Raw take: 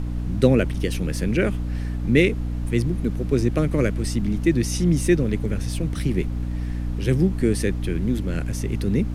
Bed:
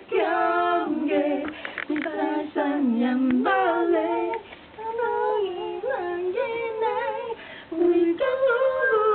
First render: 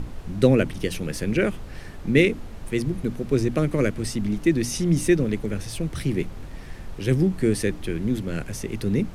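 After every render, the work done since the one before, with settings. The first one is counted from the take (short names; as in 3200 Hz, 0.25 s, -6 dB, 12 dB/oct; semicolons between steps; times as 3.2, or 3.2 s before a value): notches 60/120/180/240/300 Hz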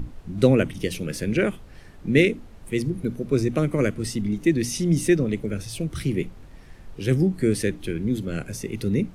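noise print and reduce 8 dB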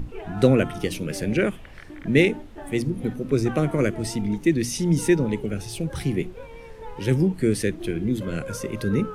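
add bed -15.5 dB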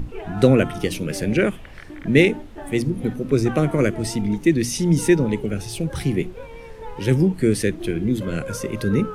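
gain +3 dB; limiter -1 dBFS, peak gain reduction 1 dB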